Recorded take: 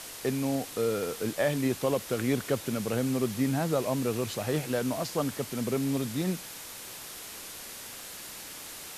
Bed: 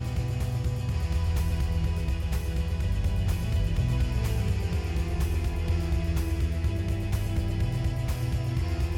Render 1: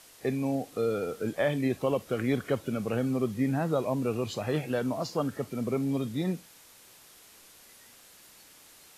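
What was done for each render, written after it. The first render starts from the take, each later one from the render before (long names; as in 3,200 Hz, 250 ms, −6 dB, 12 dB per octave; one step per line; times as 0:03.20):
noise reduction from a noise print 12 dB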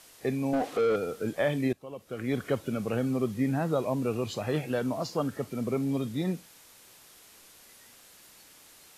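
0:00.53–0:00.96: mid-hump overdrive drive 23 dB, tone 1,600 Hz, clips at −18.5 dBFS
0:01.73–0:02.41: fade in quadratic, from −17.5 dB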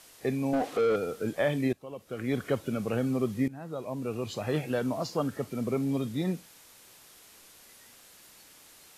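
0:03.48–0:04.53: fade in, from −18.5 dB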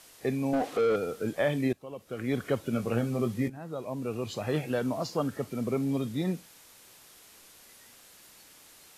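0:02.71–0:03.57: double-tracking delay 17 ms −6 dB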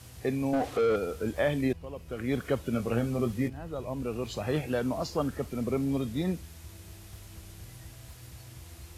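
mix in bed −20 dB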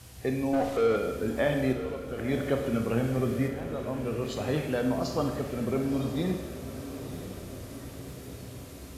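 feedback delay with all-pass diffusion 1,010 ms, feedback 62%, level −12 dB
four-comb reverb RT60 1.1 s, combs from 31 ms, DRR 5 dB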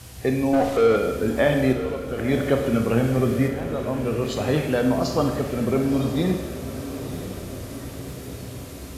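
level +7 dB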